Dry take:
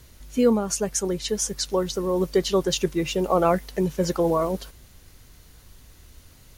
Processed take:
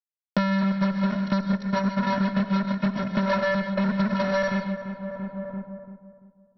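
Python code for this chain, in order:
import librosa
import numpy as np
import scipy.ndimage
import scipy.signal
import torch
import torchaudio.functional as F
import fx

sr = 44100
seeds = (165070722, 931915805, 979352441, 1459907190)

p1 = fx.pitch_bins(x, sr, semitones=-2.0)
p2 = fx.env_lowpass_down(p1, sr, base_hz=510.0, full_db=-19.0)
p3 = fx.peak_eq(p2, sr, hz=830.0, db=12.5, octaves=2.0)
p4 = fx.sample_hold(p3, sr, seeds[0], rate_hz=2600.0, jitter_pct=0)
p5 = p3 + (p4 * 10.0 ** (-10.5 / 20.0))
p6 = fx.vocoder(p5, sr, bands=16, carrier='square', carrier_hz=194.0)
p7 = fx.small_body(p6, sr, hz=(230.0, 740.0), ring_ms=85, db=13)
p8 = fx.fuzz(p7, sr, gain_db=26.0, gate_db=-35.0)
p9 = scipy.signal.sosfilt(scipy.signal.cheby1(6, 9, 5700.0, 'lowpass', fs=sr, output='sos'), p8)
p10 = p9 + fx.echo_filtered(p9, sr, ms=340, feedback_pct=34, hz=1300.0, wet_db=-17.5, dry=0)
p11 = fx.rev_gated(p10, sr, seeds[1], gate_ms=170, shape='rising', drr_db=8.5)
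y = fx.band_squash(p11, sr, depth_pct=100)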